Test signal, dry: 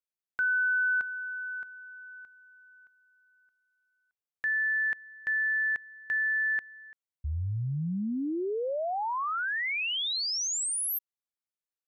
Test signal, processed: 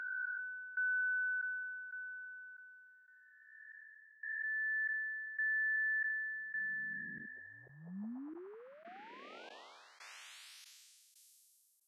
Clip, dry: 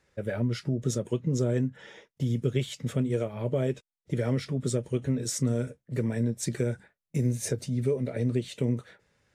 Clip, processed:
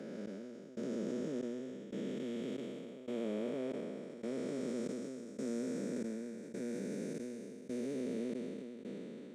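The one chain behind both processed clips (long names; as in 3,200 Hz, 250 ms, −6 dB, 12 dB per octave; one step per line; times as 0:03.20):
spectrum smeared in time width 1,300 ms
Chebyshev high-pass filter 200 Hz, order 4
high-shelf EQ 9,000 Hz −9.5 dB
gate pattern "xx....xxx" 117 BPM −24 dB
level that may fall only so fast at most 23 dB per second
level −1.5 dB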